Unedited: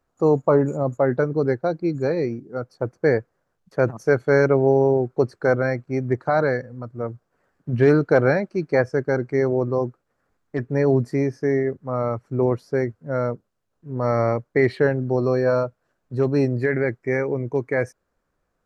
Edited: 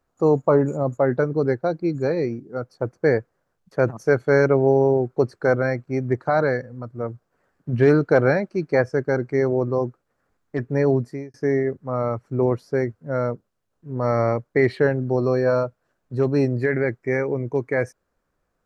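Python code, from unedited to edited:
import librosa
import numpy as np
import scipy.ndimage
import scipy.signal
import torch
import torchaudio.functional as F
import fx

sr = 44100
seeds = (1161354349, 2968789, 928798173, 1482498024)

y = fx.edit(x, sr, fx.fade_out_span(start_s=10.87, length_s=0.47), tone=tone)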